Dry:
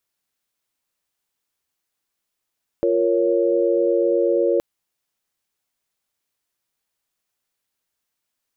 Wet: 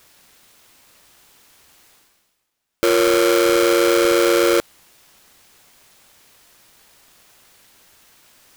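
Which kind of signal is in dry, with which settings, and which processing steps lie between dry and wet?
held notes F4/A#4/C#5 sine, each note −20 dBFS 1.77 s
each half-wave held at its own peak
reversed playback
upward compression, threshold −33 dBFS
reversed playback

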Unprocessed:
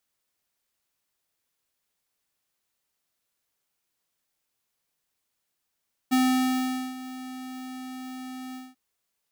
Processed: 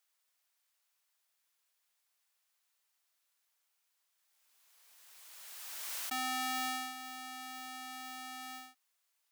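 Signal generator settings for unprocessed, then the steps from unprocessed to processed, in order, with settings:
note with an ADSR envelope square 257 Hz, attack 20 ms, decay 811 ms, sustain −17.5 dB, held 2.43 s, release 210 ms −20.5 dBFS
high-pass filter 770 Hz 12 dB per octave
brickwall limiter −22.5 dBFS
background raised ahead of every attack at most 22 dB per second

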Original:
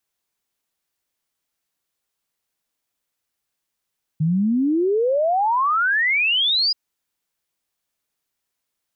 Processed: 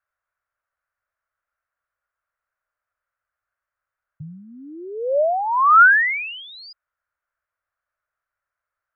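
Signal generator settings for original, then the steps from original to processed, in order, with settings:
exponential sine sweep 150 Hz → 5,000 Hz 2.53 s −16 dBFS
drawn EQ curve 100 Hz 0 dB, 210 Hz −24 dB, 410 Hz −13 dB, 590 Hz +3 dB, 840 Hz −5 dB, 1,400 Hz +11 dB, 3,500 Hz −21 dB

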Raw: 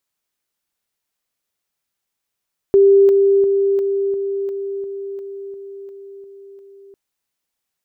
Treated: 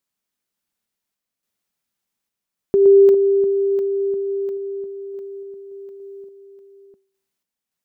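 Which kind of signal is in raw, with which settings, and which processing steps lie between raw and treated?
level staircase 395 Hz −7 dBFS, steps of −3 dB, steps 12, 0.35 s 0.00 s
parametric band 210 Hz +7.5 dB 0.78 octaves
hum removal 388.3 Hz, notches 10
sample-and-hold tremolo

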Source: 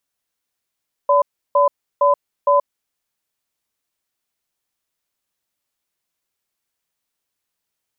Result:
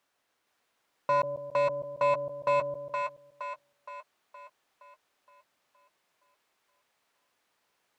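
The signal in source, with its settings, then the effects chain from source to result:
tone pair in a cadence 574 Hz, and 1,010 Hz, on 0.13 s, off 0.33 s, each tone −13.5 dBFS 1.55 s
brickwall limiter −18 dBFS
mid-hump overdrive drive 20 dB, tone 1,100 Hz, clips at −18 dBFS
echo with a time of its own for lows and highs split 590 Hz, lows 141 ms, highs 468 ms, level −3.5 dB

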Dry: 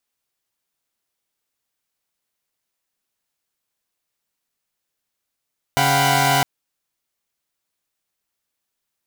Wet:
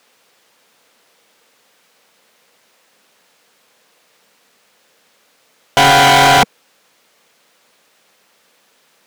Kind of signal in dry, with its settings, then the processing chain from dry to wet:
held notes C#3/F5/F#5/G5/B5 saw, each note −19 dBFS 0.66 s
high-shelf EQ 5,500 Hz −6 dB
hollow resonant body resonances 200/470 Hz, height 9 dB, ringing for 20 ms
mid-hump overdrive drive 36 dB, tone 5,200 Hz, clips at −3 dBFS

